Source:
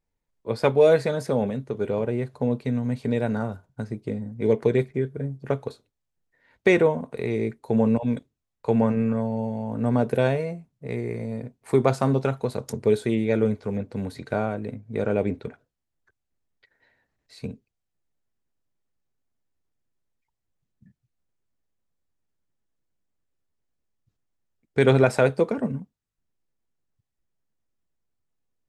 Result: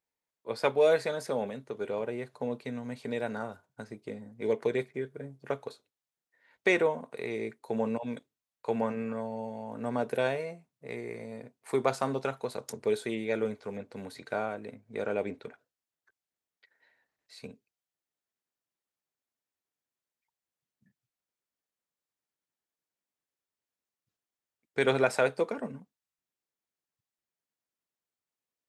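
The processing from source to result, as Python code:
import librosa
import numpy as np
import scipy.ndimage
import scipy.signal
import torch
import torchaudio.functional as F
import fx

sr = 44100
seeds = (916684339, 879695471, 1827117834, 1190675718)

y = fx.highpass(x, sr, hz=650.0, slope=6)
y = y * librosa.db_to_amplitude(-2.5)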